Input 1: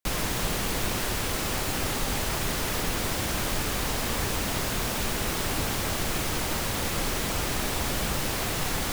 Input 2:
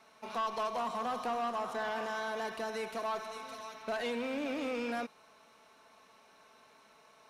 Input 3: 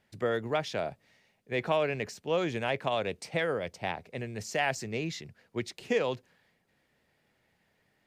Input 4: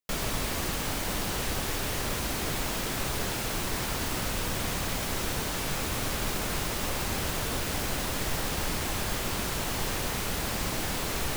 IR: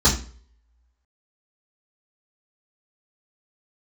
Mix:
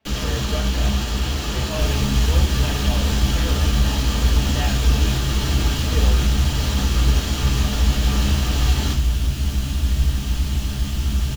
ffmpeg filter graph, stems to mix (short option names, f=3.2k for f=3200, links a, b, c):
-filter_complex "[0:a]aeval=exprs='clip(val(0),-1,0.0316)':c=same,volume=-8dB,asplit=2[a][b];[b]volume=-10dB[c];[1:a]lowpass=1.8k,equalizer=f=1.3k:w=0.68:g=-14.5,volume=-3dB[d];[2:a]volume=-13.5dB,asplit=2[e][f];[f]volume=-9.5dB[g];[3:a]bass=f=250:g=10,treble=f=4k:g=5,adelay=1700,volume=-10dB,asplit=2[h][i];[i]volume=-16.5dB[j];[4:a]atrim=start_sample=2205[k];[c][g][j]amix=inputs=3:normalize=0[l];[l][k]afir=irnorm=-1:irlink=0[m];[a][d][e][h][m]amix=inputs=5:normalize=0,equalizer=f=3k:w=2.3:g=11.5"